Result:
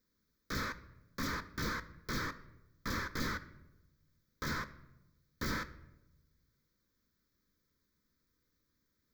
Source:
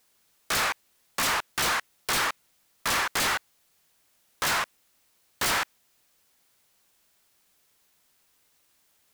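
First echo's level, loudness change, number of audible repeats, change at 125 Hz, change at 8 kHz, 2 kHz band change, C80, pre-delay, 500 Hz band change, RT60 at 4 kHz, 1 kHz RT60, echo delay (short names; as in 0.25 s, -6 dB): none, -13.0 dB, none, +2.0 dB, -19.0 dB, -12.0 dB, 18.5 dB, 4 ms, -10.0 dB, 0.60 s, 0.85 s, none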